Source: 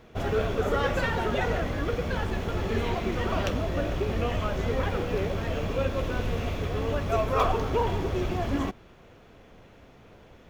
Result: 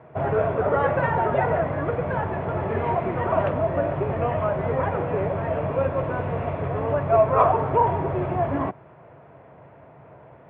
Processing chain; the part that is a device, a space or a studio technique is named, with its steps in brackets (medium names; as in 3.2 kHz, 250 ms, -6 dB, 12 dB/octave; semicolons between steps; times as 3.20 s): bass cabinet (cabinet simulation 83–2100 Hz, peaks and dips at 140 Hz +9 dB, 220 Hz -6 dB, 640 Hz +9 dB, 950 Hz +8 dB); trim +2 dB